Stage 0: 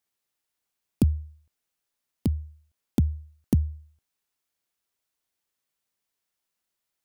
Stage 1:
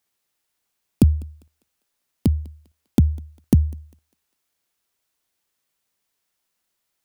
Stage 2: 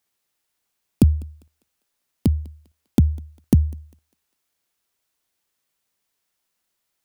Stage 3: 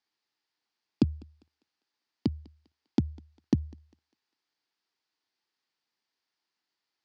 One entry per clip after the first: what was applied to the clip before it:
thinning echo 0.2 s, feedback 41%, high-pass 430 Hz, level -22.5 dB; gain +6.5 dB
nothing audible
speaker cabinet 140–5500 Hz, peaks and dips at 170 Hz -5 dB, 310 Hz +4 dB, 580 Hz -6 dB, 870 Hz +4 dB, 1800 Hz +3 dB, 4700 Hz +7 dB; gain -6.5 dB

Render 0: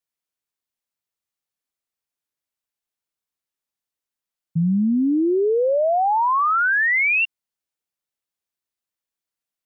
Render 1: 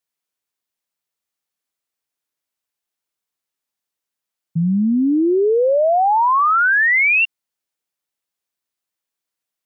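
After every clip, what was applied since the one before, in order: low shelf 120 Hz -7 dB; gain +4 dB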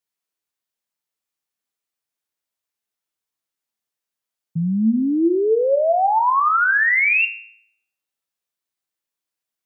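resonator 110 Hz, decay 0.64 s, harmonics all, mix 70%; gain +6 dB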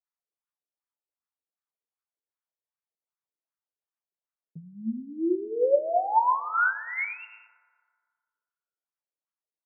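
wah 2.6 Hz 410–1300 Hz, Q 2.7; harmonic tremolo 9.2 Hz, depth 50%, crossover 960 Hz; FDN reverb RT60 1.9 s, low-frequency decay 1×, high-frequency decay 0.35×, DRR 16 dB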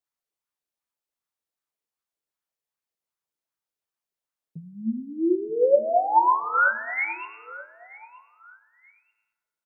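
feedback echo 0.93 s, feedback 31%, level -20 dB; gain +3.5 dB

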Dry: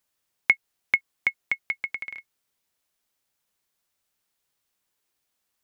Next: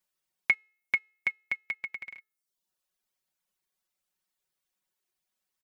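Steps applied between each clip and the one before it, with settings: de-hum 431.2 Hz, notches 34; reverb removal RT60 0.71 s; comb 5.4 ms, depth 68%; gain -6.5 dB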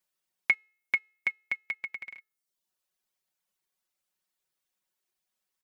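low shelf 160 Hz -3.5 dB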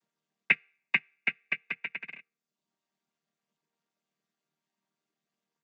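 chord vocoder major triad, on D#3; gain +2 dB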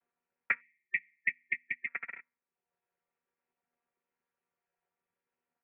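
mistuned SSB -220 Hz 450–2700 Hz; limiter -16.5 dBFS, peak gain reduction 7.5 dB; spectral delete 0.61–1.88, 380–1800 Hz; gain +1 dB

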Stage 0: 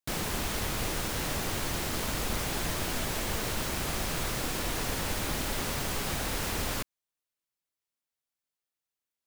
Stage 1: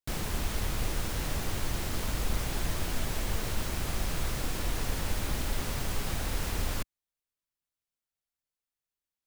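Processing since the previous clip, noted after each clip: low shelf 95 Hz +11.5 dB; gain -4 dB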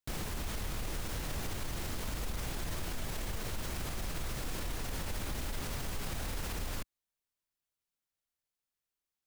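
limiter -28.5 dBFS, peak gain reduction 11 dB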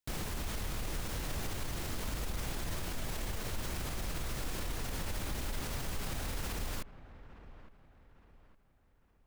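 dark delay 0.861 s, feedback 38%, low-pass 1900 Hz, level -15 dB

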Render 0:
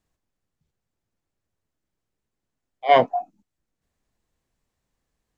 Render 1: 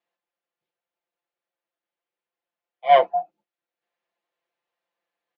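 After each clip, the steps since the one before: octaver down 2 oct, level +3 dB; Chebyshev band-pass 570–3200 Hz, order 2; comb 5.8 ms, depth 100%; gain -3.5 dB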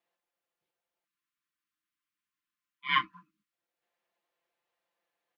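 spectral delete 1.05–3.52, 340–1000 Hz

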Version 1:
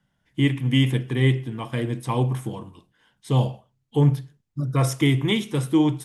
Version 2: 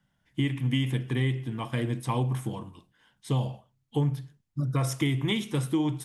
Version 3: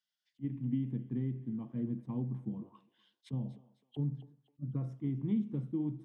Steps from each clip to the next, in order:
bell 430 Hz -3 dB 0.79 oct; compressor, threshold -21 dBFS, peak gain reduction 8 dB; gain -1.5 dB
auto-wah 210–4800 Hz, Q 3, down, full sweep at -30 dBFS; thinning echo 0.258 s, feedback 39%, high-pass 590 Hz, level -18 dB; attack slew limiter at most 550 dB/s

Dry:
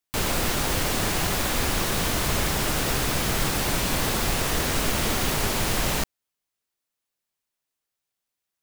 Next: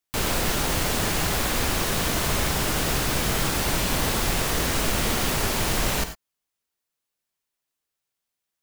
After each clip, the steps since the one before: non-linear reverb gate 0.12 s rising, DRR 9.5 dB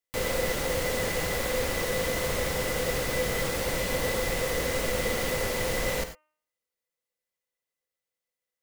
de-hum 306.3 Hz, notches 10; small resonant body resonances 510/2000 Hz, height 18 dB, ringing for 80 ms; gain -7 dB

